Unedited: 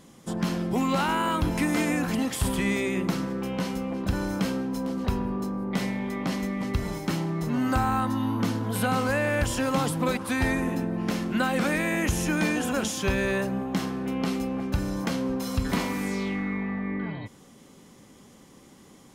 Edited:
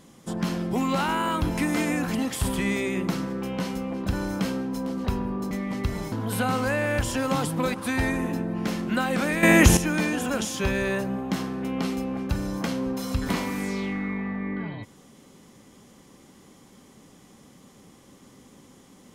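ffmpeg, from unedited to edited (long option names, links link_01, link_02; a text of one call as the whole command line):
ffmpeg -i in.wav -filter_complex "[0:a]asplit=5[link_01][link_02][link_03][link_04][link_05];[link_01]atrim=end=5.512[link_06];[link_02]atrim=start=6.408:end=7.022[link_07];[link_03]atrim=start=8.548:end=11.862[link_08];[link_04]atrim=start=11.858:end=12.202,asetpts=PTS-STARTPTS,volume=10.5dB[link_09];[link_05]atrim=start=12.198[link_10];[link_06][link_07]acrossfade=duration=0.004:curve1=hsin:curve2=hsin[link_11];[link_11][link_08]acrossfade=duration=0.004:curve1=hsin:curve2=hsin[link_12];[link_12][link_09]acrossfade=duration=0.004:curve1=hsin:curve2=hsin[link_13];[link_13][link_10]acrossfade=duration=0.004:curve1=hsin:curve2=hsin" out.wav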